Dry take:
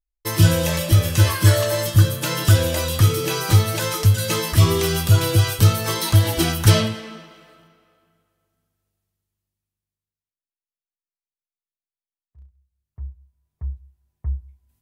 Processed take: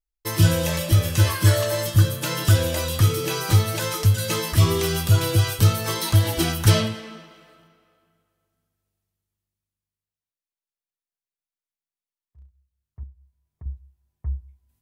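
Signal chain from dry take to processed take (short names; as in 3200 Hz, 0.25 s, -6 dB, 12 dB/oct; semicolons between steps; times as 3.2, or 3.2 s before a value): 13.03–13.66 compressor 3:1, threshold -38 dBFS, peak gain reduction 10 dB; gain -2.5 dB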